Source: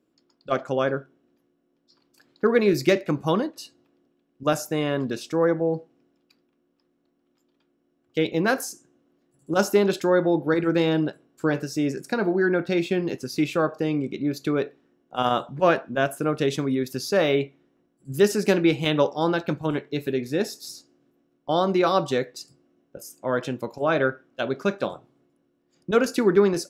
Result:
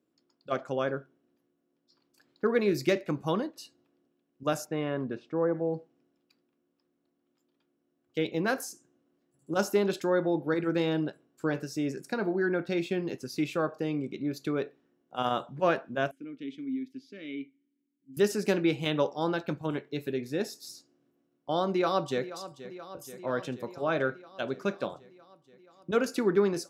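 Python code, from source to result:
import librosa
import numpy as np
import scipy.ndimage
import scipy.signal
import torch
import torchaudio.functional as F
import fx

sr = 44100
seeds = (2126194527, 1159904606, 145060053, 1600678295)

y = fx.lowpass(x, sr, hz=fx.line((4.64, 3200.0), (5.53, 1200.0)), slope=12, at=(4.64, 5.53), fade=0.02)
y = fx.vowel_filter(y, sr, vowel='i', at=(16.11, 18.17))
y = fx.echo_throw(y, sr, start_s=21.68, length_s=0.67, ms=480, feedback_pct=75, wet_db=-14.5)
y = scipy.signal.sosfilt(scipy.signal.butter(2, 61.0, 'highpass', fs=sr, output='sos'), y)
y = y * 10.0 ** (-6.5 / 20.0)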